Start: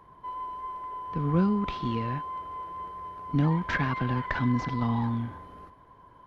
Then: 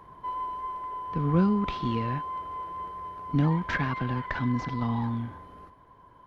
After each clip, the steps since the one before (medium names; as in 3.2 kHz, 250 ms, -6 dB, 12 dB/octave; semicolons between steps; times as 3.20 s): gain riding within 4 dB 2 s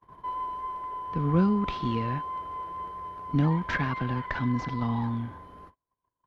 gate -49 dBFS, range -34 dB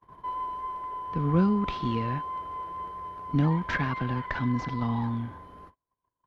no audible change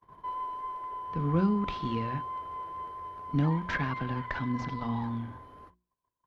hum notches 60/120/180/240/300/360 Hz; trim -2.5 dB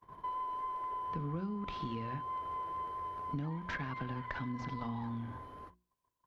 compression 6:1, threshold -37 dBFS, peak gain reduction 15 dB; trim +1 dB